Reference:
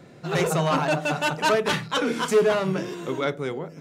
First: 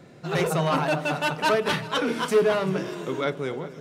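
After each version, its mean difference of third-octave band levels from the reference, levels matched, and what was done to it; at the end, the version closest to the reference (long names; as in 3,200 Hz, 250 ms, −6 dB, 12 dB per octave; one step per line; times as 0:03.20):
1.0 dB: echo machine with several playback heads 129 ms, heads second and third, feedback 59%, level −20 dB
dynamic equaliser 7,000 Hz, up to −6 dB, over −52 dBFS, Q 3.1
level −1 dB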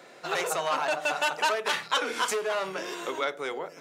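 7.0 dB: downward compressor, threshold −26 dBFS, peak gain reduction 11.5 dB
high-pass filter 600 Hz 12 dB per octave
level +4.5 dB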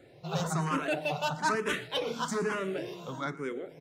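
4.0 dB: on a send: repeating echo 118 ms, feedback 54%, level −18.5 dB
on the sum: frequency shifter mixed with the dry sound +1.1 Hz
level −4.5 dB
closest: first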